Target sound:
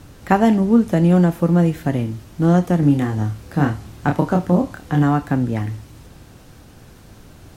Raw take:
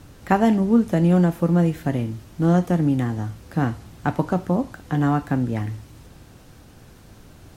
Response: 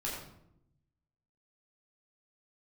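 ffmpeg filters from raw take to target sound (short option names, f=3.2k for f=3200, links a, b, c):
-filter_complex "[0:a]asettb=1/sr,asplit=3[a][b][c];[a]atrim=end=2.804[d];[b]atrim=start=2.8:end=5.03,asetpts=PTS-STARTPTS,afade=t=in:d=0.004:c=qsin,afade=t=out:st=2.226:d=0.004:c=qsin,asplit=2[e][f];[f]adelay=28,volume=-5dB[g];[e][g]amix=inputs=2:normalize=0,atrim=end_sample=98343[h];[c]atrim=start=5.026[i];[d][h]acrossfade=d=0.004:c1=hsin:c2=qsin[j];[j][i]acrossfade=d=0.004:c1=qsin:c2=hsin,volume=3dB"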